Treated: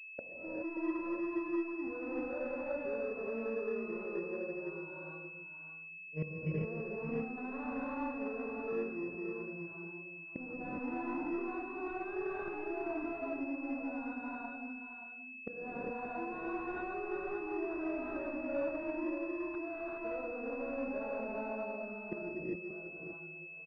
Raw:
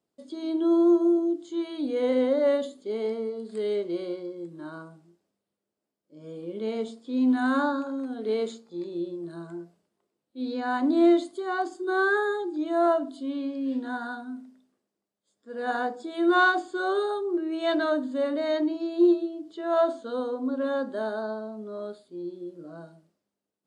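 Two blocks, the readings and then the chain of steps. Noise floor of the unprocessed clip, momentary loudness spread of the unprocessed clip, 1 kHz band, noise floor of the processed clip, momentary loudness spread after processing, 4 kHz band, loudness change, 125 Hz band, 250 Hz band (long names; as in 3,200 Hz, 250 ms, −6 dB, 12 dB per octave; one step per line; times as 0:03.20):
−85 dBFS, 17 LU, −13.0 dB, −49 dBFS, 8 LU, below −25 dB, −13.0 dB, +3.5 dB, −12.5 dB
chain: noise reduction from a noise print of the clip's start 15 dB
mains-hum notches 60/120/180/240/300/360 Hz
downward expander −49 dBFS
in parallel at 0 dB: brickwall limiter −20.5 dBFS, peak gain reduction 11 dB
on the sum: gain into a clipping stage and back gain 25 dB
gate with flip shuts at −42 dBFS, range −32 dB
single-tap delay 579 ms −9.5 dB
reverb whose tail is shaped and stops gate 440 ms rising, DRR −6 dB
switching amplifier with a slow clock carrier 2,600 Hz
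level +14.5 dB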